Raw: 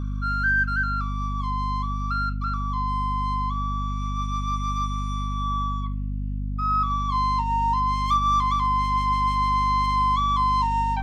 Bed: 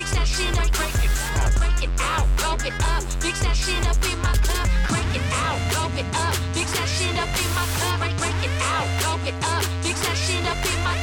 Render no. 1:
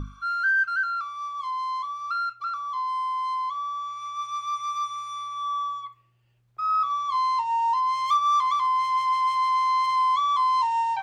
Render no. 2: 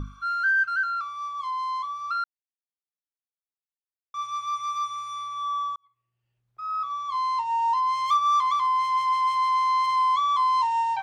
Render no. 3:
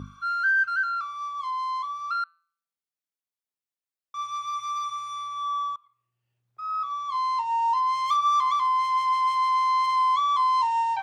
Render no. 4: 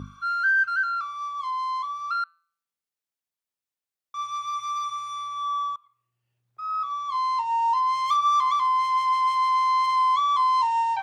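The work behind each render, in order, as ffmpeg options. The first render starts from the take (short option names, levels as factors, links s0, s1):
-af "bandreject=f=50:t=h:w=6,bandreject=f=100:t=h:w=6,bandreject=f=150:t=h:w=6,bandreject=f=200:t=h:w=6,bandreject=f=250:t=h:w=6"
-filter_complex "[0:a]asplit=4[s0][s1][s2][s3];[s0]atrim=end=2.24,asetpts=PTS-STARTPTS,afade=t=out:st=2.236:d=0.004:c=hsin[s4];[s1]atrim=start=2.24:end=4.14,asetpts=PTS-STARTPTS,volume=0[s5];[s2]atrim=start=4.14:end=5.76,asetpts=PTS-STARTPTS,afade=t=in:d=0.004:c=hsin,afade=t=out:st=1.616:d=0.004:c=hsin[s6];[s3]atrim=start=5.76,asetpts=PTS-STARTPTS,afade=t=in:d=1.94[s7];[s4][s5][s6][s7]concat=n=4:v=0:a=1"
-af "highpass=89,bandreject=f=168.2:t=h:w=4,bandreject=f=336.4:t=h:w=4,bandreject=f=504.6:t=h:w=4,bandreject=f=672.8:t=h:w=4,bandreject=f=841:t=h:w=4,bandreject=f=1009.2:t=h:w=4,bandreject=f=1177.4:t=h:w=4,bandreject=f=1345.6:t=h:w=4,bandreject=f=1513.8:t=h:w=4,bandreject=f=1682:t=h:w=4,bandreject=f=1850.2:t=h:w=4,bandreject=f=2018.4:t=h:w=4,bandreject=f=2186.6:t=h:w=4,bandreject=f=2354.8:t=h:w=4,bandreject=f=2523:t=h:w=4,bandreject=f=2691.2:t=h:w=4,bandreject=f=2859.4:t=h:w=4,bandreject=f=3027.6:t=h:w=4,bandreject=f=3195.8:t=h:w=4,bandreject=f=3364:t=h:w=4,bandreject=f=3532.2:t=h:w=4,bandreject=f=3700.4:t=h:w=4,bandreject=f=3868.6:t=h:w=4,bandreject=f=4036.8:t=h:w=4,bandreject=f=4205:t=h:w=4,bandreject=f=4373.2:t=h:w=4,bandreject=f=4541.4:t=h:w=4"
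-af "volume=1.12"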